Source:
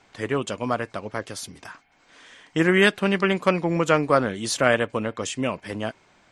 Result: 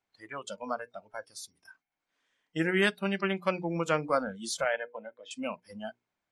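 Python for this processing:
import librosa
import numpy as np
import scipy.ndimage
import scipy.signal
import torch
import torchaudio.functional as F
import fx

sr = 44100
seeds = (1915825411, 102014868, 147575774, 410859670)

y = fx.cabinet(x, sr, low_hz=290.0, low_slope=12, high_hz=3400.0, hz=(490.0, 1200.0, 2700.0), db=(-4, -7, -5), at=(4.64, 5.31))
y = fx.hum_notches(y, sr, base_hz=60, count=8)
y = fx.noise_reduce_blind(y, sr, reduce_db=20)
y = F.gain(torch.from_numpy(y), -8.0).numpy()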